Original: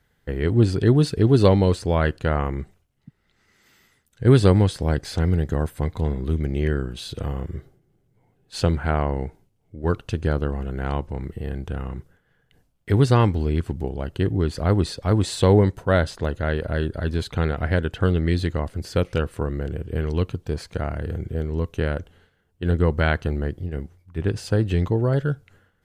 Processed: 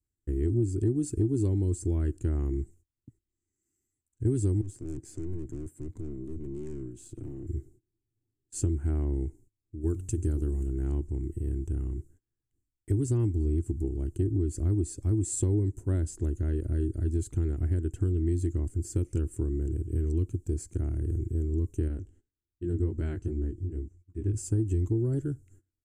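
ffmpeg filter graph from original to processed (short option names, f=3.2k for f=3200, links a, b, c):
-filter_complex "[0:a]asettb=1/sr,asplit=3[a][b][c];[a]atrim=end=4.614[d];[b]atrim=start=4.61:end=7.47,asetpts=PTS-STARTPTS,afade=t=in:d=0.004:c=qsin,afade=t=out:st=2.856:d=0.004:c=qsin,highpass=f=100:w=0.5412,highpass=f=100:w=1.3066,highshelf=f=5k:g=-10.5,aeval=exprs='(tanh(28.2*val(0)+0.65)-tanh(0.65))/28.2':c=same[e];[c]atrim=start=7.466[f];[d][e]acrossfade=d=0.004:c1=hsin:c2=qsin[g];[g][f]acrossfade=d=0.004:c1=qsin:c2=hsin,asettb=1/sr,asplit=3[h][i][j];[h]atrim=end=9.814[k];[i]atrim=start=9.81:end=10.68,asetpts=PTS-STARTPTS,afade=t=in:d=0.004:c=qsin,afade=t=out:st=0.866:d=0.004:c=qsin,aemphasis=mode=production:type=cd,bandreject=f=92.71:t=h:w=4,bandreject=f=185.42:t=h:w=4,bandreject=f=278.13:t=h:w=4,bandreject=f=370.84:t=h:w=4,bandreject=f=463.55:t=h:w=4,bandreject=f=556.26:t=h:w=4,bandreject=f=648.97:t=h:w=4,bandreject=f=741.68:t=h:w=4[l];[j]atrim=start=10.676[m];[k][l]acrossfade=d=0.004:c1=hsin:c2=qsin[n];[n][m]acrossfade=d=0.004:c1=qsin:c2=hsin,asettb=1/sr,asplit=3[o][p][q];[o]atrim=end=21.884[r];[p]atrim=start=21.88:end=24.34,asetpts=PTS-STARTPTS,afade=t=in:d=0.004:c=qsin,afade=t=out:st=2.456:d=0.004:c=qsin,lowpass=7.4k,flanger=delay=17:depth=3.3:speed=2.6[s];[q]atrim=start=24.336[t];[r][s]acrossfade=d=0.004:c1=hsin:c2=qsin[u];[u][t]acrossfade=d=0.004:c1=qsin:c2=hsin,agate=range=-17dB:threshold=-52dB:ratio=16:detection=peak,firequalizer=gain_entry='entry(110,0);entry(160,-14);entry(330,4);entry(490,-21);entry(1100,-24);entry(2500,-21);entry(3800,-27);entry(7400,7);entry(12000,-6)':delay=0.05:min_phase=1,acompressor=threshold=-23dB:ratio=6"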